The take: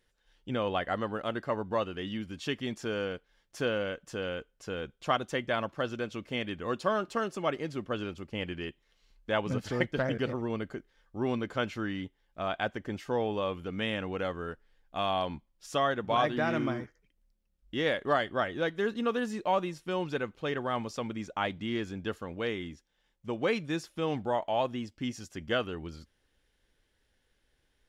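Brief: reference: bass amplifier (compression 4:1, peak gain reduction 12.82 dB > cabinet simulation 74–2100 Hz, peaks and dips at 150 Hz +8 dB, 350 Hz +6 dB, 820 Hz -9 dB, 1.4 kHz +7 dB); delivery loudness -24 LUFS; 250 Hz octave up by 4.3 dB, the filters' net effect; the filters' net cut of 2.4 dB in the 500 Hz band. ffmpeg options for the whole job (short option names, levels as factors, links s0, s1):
-af "equalizer=f=250:t=o:g=4,equalizer=f=500:t=o:g=-5.5,acompressor=threshold=0.0126:ratio=4,highpass=f=74:w=0.5412,highpass=f=74:w=1.3066,equalizer=f=150:t=q:w=4:g=8,equalizer=f=350:t=q:w=4:g=6,equalizer=f=820:t=q:w=4:g=-9,equalizer=f=1400:t=q:w=4:g=7,lowpass=f=2100:w=0.5412,lowpass=f=2100:w=1.3066,volume=6.68"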